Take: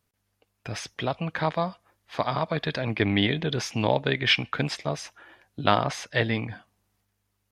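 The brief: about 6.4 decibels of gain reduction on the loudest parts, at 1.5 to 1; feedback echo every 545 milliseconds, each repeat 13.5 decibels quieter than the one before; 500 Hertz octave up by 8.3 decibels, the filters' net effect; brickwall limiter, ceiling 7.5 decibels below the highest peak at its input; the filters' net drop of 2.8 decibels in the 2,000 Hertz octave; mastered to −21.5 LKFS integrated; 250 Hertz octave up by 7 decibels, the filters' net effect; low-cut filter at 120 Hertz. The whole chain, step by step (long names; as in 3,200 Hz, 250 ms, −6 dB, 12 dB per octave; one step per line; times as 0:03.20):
high-pass filter 120 Hz
parametric band 250 Hz +7 dB
parametric band 500 Hz +9 dB
parametric band 2,000 Hz −4 dB
downward compressor 1.5 to 1, threshold −28 dBFS
brickwall limiter −14.5 dBFS
repeating echo 545 ms, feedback 21%, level −13.5 dB
level +7 dB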